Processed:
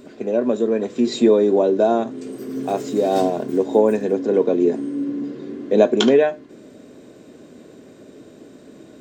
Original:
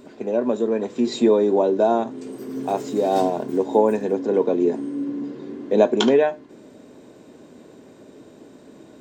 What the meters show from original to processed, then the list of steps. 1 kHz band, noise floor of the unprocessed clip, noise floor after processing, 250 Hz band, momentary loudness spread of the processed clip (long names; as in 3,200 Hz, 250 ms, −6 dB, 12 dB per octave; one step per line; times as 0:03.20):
−1.0 dB, −47 dBFS, −45 dBFS, +2.5 dB, 13 LU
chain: parametric band 900 Hz −8 dB 0.37 octaves
level +2.5 dB